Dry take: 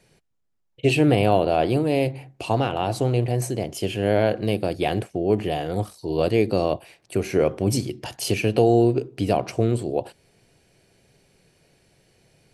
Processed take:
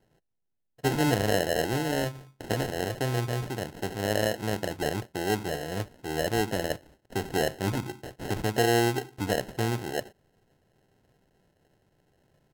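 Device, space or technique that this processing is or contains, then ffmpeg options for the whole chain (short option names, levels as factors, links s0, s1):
crushed at another speed: -af "asetrate=55125,aresample=44100,acrusher=samples=30:mix=1:aa=0.000001,asetrate=35280,aresample=44100,volume=0.447"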